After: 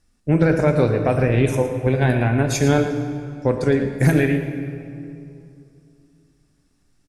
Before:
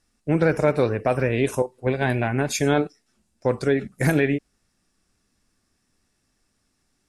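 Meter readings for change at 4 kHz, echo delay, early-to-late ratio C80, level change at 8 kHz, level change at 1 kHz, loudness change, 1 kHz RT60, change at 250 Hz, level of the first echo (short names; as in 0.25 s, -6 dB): +1.0 dB, 0.112 s, 7.5 dB, +2.0 dB, +1.5 dB, +3.5 dB, 2.4 s, +4.5 dB, -11.5 dB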